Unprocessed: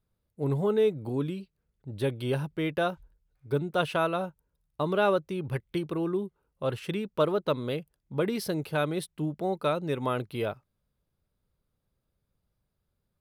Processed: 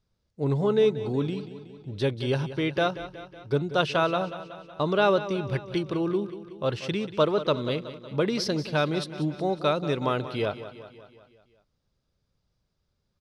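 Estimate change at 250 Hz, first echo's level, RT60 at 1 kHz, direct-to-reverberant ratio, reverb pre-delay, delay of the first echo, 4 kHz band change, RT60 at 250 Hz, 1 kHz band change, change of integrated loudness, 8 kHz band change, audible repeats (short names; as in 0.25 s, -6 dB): +3.0 dB, -13.5 dB, none, none, none, 0.185 s, +6.5 dB, none, +3.0 dB, +3.0 dB, +2.0 dB, 5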